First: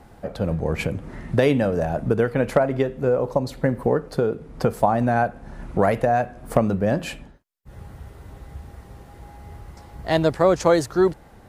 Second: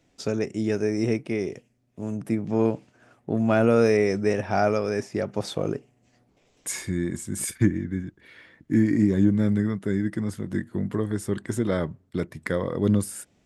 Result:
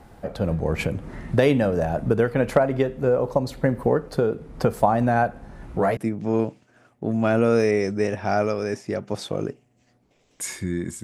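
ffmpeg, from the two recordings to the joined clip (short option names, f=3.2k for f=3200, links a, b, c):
-filter_complex "[0:a]asplit=3[a][b][c];[a]afade=t=out:st=5.45:d=0.02[d];[b]flanger=delay=15.5:depth=4.1:speed=0.83,afade=t=in:st=5.45:d=0.02,afade=t=out:st=5.97:d=0.02[e];[c]afade=t=in:st=5.97:d=0.02[f];[d][e][f]amix=inputs=3:normalize=0,apad=whole_dur=11.03,atrim=end=11.03,atrim=end=5.972[g];[1:a]atrim=start=2.228:end=7.29[h];[g][h]acrossfade=d=0.004:c1=hsin:c2=hsin"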